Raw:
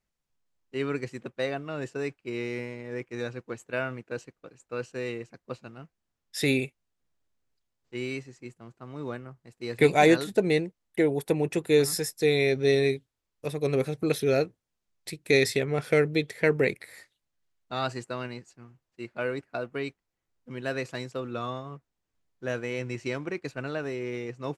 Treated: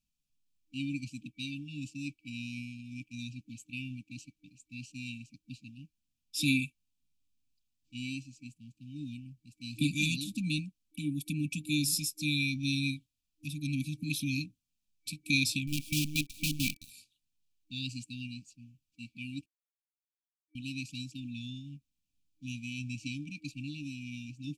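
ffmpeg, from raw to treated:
ffmpeg -i in.wav -filter_complex "[0:a]asettb=1/sr,asplit=3[link_01][link_02][link_03];[link_01]atrim=end=15.674[link_04];[link_02]atrim=start=15.67:end=16.9,asetpts=PTS-STARTPTS,afade=type=in:duration=0.004:curve=qsin,afade=type=out:start_time=1.226:duration=0.004:curve=qsin,acrusher=bits=5:dc=4:mix=0:aa=0.000001[link_05];[link_03]atrim=start=16.896[link_06];[link_04][link_05]acrossfade=duration=0.004:curve1=hsin:curve2=qsin[link_07];[link_07][link_06]acrossfade=duration=0.004:curve1=qsin:curve2=hsin,asplit=3[link_08][link_09][link_10];[link_08]atrim=end=19.46,asetpts=PTS-STARTPTS,afade=type=out:start_time=19.456:duration=0.004:curve=hsin[link_11];[link_09]atrim=start=19.46:end=20.55,asetpts=PTS-STARTPTS,volume=0[link_12];[link_10]atrim=start=20.55,asetpts=PTS-STARTPTS,afade=type=in:duration=0.004:curve=hsin[link_13];[link_11][link_12][link_13]concat=n=3:v=0:a=1,afftfilt=real='re*(1-between(b*sr/4096,310,2300))':imag='im*(1-between(b*sr/4096,310,2300))':win_size=4096:overlap=0.75,equalizer=frequency=90:width_type=o:width=2.9:gain=-3,acontrast=23,volume=-5dB" out.wav

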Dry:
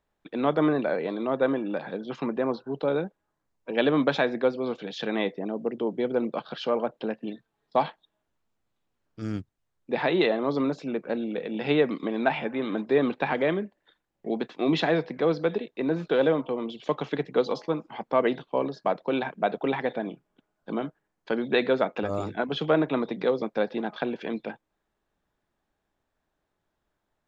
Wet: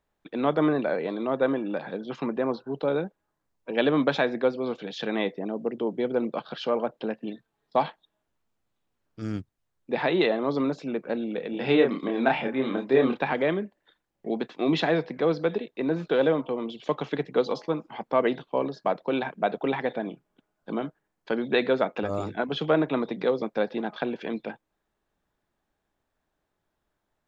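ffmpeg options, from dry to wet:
ffmpeg -i in.wav -filter_complex "[0:a]asettb=1/sr,asplit=3[link_01][link_02][link_03];[link_01]atrim=end=11.504[link_04];[link_02]atrim=start=11.5:end=13.23,asetpts=PTS-STARTPTS,afade=type=in:duration=0.004:curve=qsin,afade=type=out:start_time=1.726:duration=0.004:curve=qsin,asplit=2[link_05][link_06];[link_06]adelay=30,volume=-3.5dB[link_07];[link_05][link_07]amix=inputs=2:normalize=0,atrim=end_sample=76293[link_08];[link_03]atrim=start=13.226[link_09];[link_04][link_08]acrossfade=duration=0.004:curve1=hsin:curve2=qsin[link_10];[link_10][link_09]acrossfade=duration=0.004:curve1=qsin:curve2=hsin" out.wav

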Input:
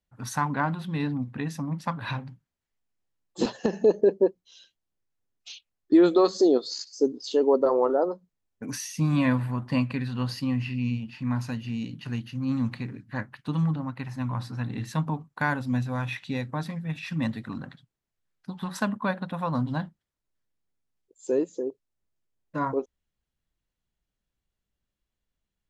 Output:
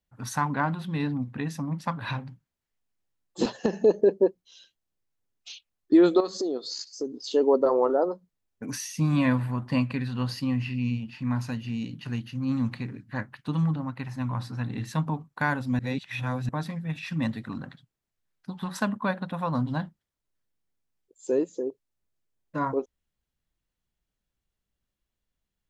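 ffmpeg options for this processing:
ffmpeg -i in.wav -filter_complex "[0:a]asettb=1/sr,asplit=3[link_01][link_02][link_03];[link_01]atrim=end=6.204[link_04];[link_02]atrim=start=6.2:end=7.3,asetpts=PTS-STARTPTS,afade=type=in:duration=0.004:curve=qsin,afade=type=out:start_time=1.096:duration=0.004:curve=qsin,acompressor=threshold=-30dB:ratio=2.5:attack=3.2:release=140:knee=1:detection=peak[link_05];[link_03]atrim=start=7.296[link_06];[link_04][link_05]acrossfade=duration=0.004:curve1=hsin:curve2=qsin[link_07];[link_07][link_06]acrossfade=duration=0.004:curve1=qsin:curve2=hsin,asplit=3[link_08][link_09][link_10];[link_08]atrim=end=15.792[link_11];[link_09]atrim=start=15.788:end=16.492,asetpts=PTS-STARTPTS,areverse[link_12];[link_10]atrim=start=16.488[link_13];[link_11][link_12]acrossfade=duration=0.004:curve1=hsin:curve2=hsin[link_14];[link_14][link_13]acrossfade=duration=0.004:curve1=hsin:curve2=hsin" out.wav

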